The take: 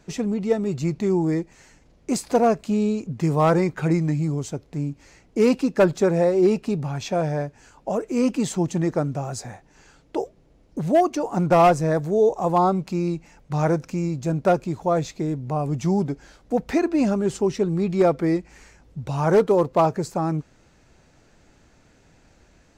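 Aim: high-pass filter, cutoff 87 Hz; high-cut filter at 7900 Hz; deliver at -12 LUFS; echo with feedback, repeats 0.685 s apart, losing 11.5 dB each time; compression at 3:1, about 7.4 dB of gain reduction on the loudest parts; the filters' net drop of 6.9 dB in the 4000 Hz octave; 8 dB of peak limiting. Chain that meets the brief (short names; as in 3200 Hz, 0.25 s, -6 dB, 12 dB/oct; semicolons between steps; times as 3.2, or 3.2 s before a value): HPF 87 Hz; LPF 7900 Hz; bell 4000 Hz -9 dB; compressor 3:1, threshold -23 dBFS; limiter -20.5 dBFS; feedback echo 0.685 s, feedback 27%, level -11.5 dB; gain +18 dB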